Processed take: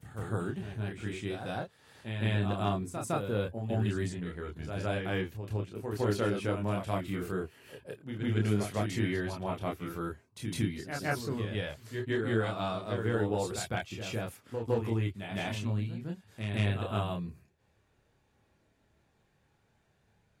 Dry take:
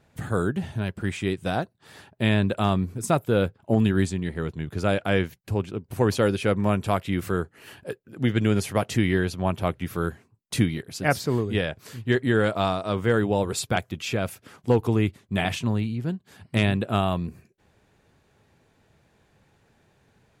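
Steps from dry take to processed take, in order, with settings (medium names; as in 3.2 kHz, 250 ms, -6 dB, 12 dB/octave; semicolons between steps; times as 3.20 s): chorus voices 4, 0.14 Hz, delay 28 ms, depth 1.9 ms; reverse echo 159 ms -6.5 dB; trim -6.5 dB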